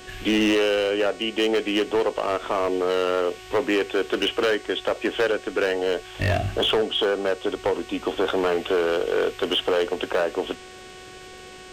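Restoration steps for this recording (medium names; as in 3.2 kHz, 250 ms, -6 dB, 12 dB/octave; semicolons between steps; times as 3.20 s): clip repair -16.5 dBFS; de-hum 370.6 Hz, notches 24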